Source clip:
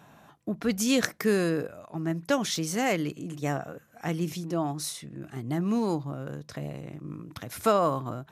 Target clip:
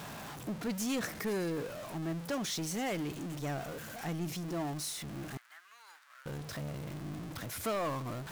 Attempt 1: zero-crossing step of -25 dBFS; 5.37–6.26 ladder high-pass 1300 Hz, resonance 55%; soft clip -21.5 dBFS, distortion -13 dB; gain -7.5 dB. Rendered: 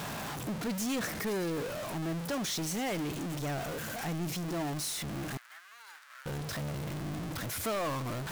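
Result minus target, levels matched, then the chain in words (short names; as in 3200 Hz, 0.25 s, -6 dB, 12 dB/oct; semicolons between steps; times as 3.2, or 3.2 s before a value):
zero-crossing step: distortion +5 dB
zero-crossing step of -32 dBFS; 5.37–6.26 ladder high-pass 1300 Hz, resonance 55%; soft clip -21.5 dBFS, distortion -12 dB; gain -7.5 dB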